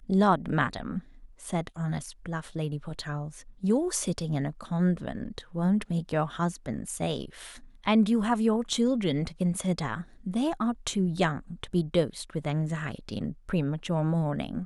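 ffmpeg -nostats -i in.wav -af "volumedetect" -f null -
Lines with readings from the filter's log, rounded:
mean_volume: -28.7 dB
max_volume: -10.4 dB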